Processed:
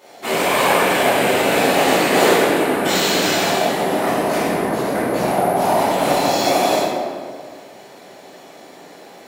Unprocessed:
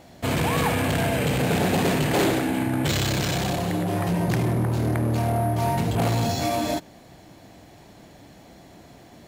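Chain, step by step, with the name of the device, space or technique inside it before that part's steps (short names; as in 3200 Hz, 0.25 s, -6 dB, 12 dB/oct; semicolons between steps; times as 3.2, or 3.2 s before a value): whispering ghost (whisperiser; HPF 400 Hz 12 dB/oct; reverb RT60 1.8 s, pre-delay 9 ms, DRR -10 dB)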